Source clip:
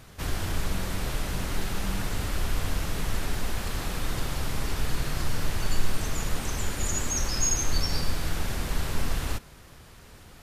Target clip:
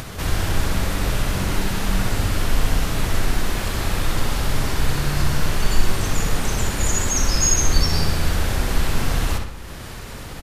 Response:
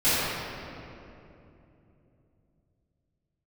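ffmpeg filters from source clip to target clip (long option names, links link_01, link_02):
-filter_complex "[0:a]asplit=2[link_01][link_02];[link_02]adelay=63,lowpass=frequency=4800:poles=1,volume=-4dB,asplit=2[link_03][link_04];[link_04]adelay=63,lowpass=frequency=4800:poles=1,volume=0.54,asplit=2[link_05][link_06];[link_06]adelay=63,lowpass=frequency=4800:poles=1,volume=0.54,asplit=2[link_07][link_08];[link_08]adelay=63,lowpass=frequency=4800:poles=1,volume=0.54,asplit=2[link_09][link_10];[link_10]adelay=63,lowpass=frequency=4800:poles=1,volume=0.54,asplit=2[link_11][link_12];[link_12]adelay=63,lowpass=frequency=4800:poles=1,volume=0.54,asplit=2[link_13][link_14];[link_14]adelay=63,lowpass=frequency=4800:poles=1,volume=0.54[link_15];[link_01][link_03][link_05][link_07][link_09][link_11][link_13][link_15]amix=inputs=8:normalize=0,acompressor=mode=upward:threshold=-31dB:ratio=2.5,volume=6.5dB"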